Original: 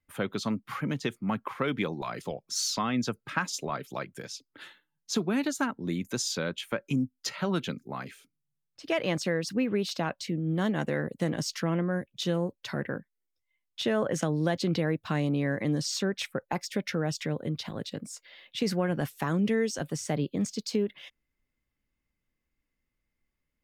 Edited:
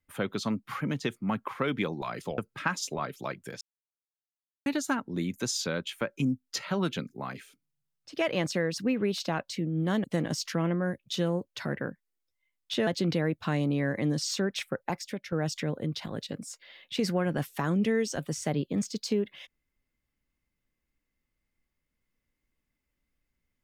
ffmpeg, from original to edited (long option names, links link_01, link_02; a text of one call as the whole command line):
ffmpeg -i in.wav -filter_complex "[0:a]asplit=7[link_01][link_02][link_03][link_04][link_05][link_06][link_07];[link_01]atrim=end=2.382[link_08];[link_02]atrim=start=3.088:end=4.32,asetpts=PTS-STARTPTS,afade=type=out:start_time=1.228:duration=0.004:curve=hsin[link_09];[link_03]atrim=start=4.32:end=5.37,asetpts=PTS-STARTPTS,volume=0[link_10];[link_04]atrim=start=5.37:end=10.752,asetpts=PTS-STARTPTS,afade=type=in:duration=0.004:curve=hsin[link_11];[link_05]atrim=start=11.118:end=13.952[link_12];[link_06]atrim=start=14.498:end=16.95,asetpts=PTS-STARTPTS,afade=type=out:start_time=1.992:duration=0.46:silence=0.266073[link_13];[link_07]atrim=start=16.95,asetpts=PTS-STARTPTS,afade=type=in:duration=0.004:curve=hsin:silence=0.266073[link_14];[link_09][link_10][link_11]concat=n=3:v=0:a=1[link_15];[link_08][link_15]acrossfade=duration=0.004:curve1=hsin:curve2=hsin[link_16];[link_16][link_12]acrossfade=duration=0.004:curve1=hsin:curve2=hsin[link_17];[link_13][link_14]concat=n=2:v=0:a=1[link_18];[link_17][link_18]acrossfade=duration=0.004:curve1=hsin:curve2=hsin" out.wav